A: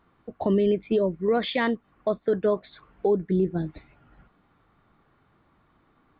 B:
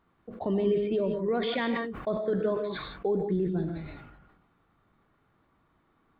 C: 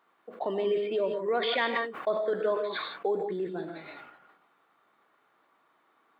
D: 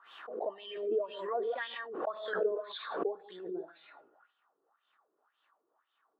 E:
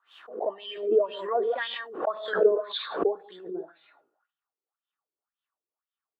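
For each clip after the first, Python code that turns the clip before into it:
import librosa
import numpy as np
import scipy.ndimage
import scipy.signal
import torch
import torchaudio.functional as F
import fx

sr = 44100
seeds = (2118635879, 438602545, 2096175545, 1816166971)

y1 = fx.rev_gated(x, sr, seeds[0], gate_ms=200, shape='rising', drr_db=6.0)
y1 = fx.sustainer(y1, sr, db_per_s=46.0)
y1 = F.gain(torch.from_numpy(y1), -6.0).numpy()
y2 = scipy.signal.sosfilt(scipy.signal.butter(2, 520.0, 'highpass', fs=sr, output='sos'), y1)
y2 = F.gain(torch.from_numpy(y2), 4.5).numpy()
y3 = fx.peak_eq(y2, sr, hz=2200.0, db=-13.5, octaves=0.31)
y3 = fx.wah_lfo(y3, sr, hz=1.9, low_hz=370.0, high_hz=3300.0, q=4.2)
y3 = fx.pre_swell(y3, sr, db_per_s=64.0)
y4 = fx.band_widen(y3, sr, depth_pct=70)
y4 = F.gain(torch.from_numpy(y4), 6.5).numpy()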